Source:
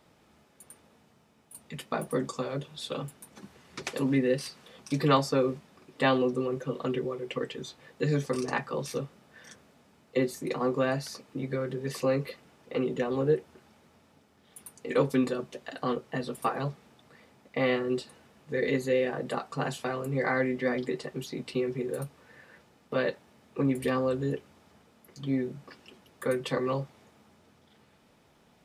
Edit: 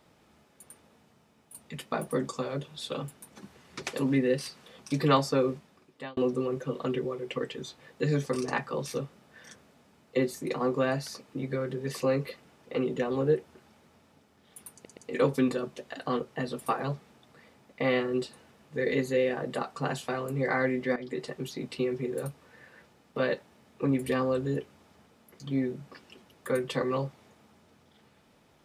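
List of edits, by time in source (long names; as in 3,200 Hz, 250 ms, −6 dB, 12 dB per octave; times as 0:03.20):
0:05.50–0:06.17: fade out
0:14.73: stutter 0.12 s, 3 plays
0:20.72–0:21.01: fade in, from −13.5 dB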